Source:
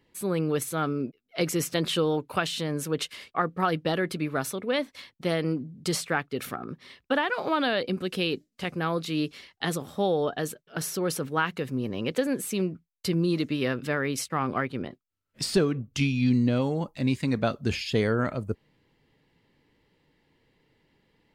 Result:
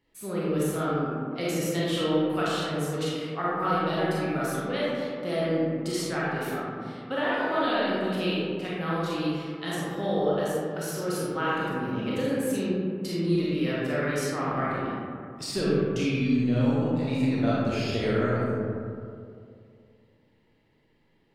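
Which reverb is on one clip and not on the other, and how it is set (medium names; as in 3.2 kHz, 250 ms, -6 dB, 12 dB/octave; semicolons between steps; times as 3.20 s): algorithmic reverb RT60 2.4 s, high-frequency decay 0.35×, pre-delay 0 ms, DRR -8 dB; trim -8.5 dB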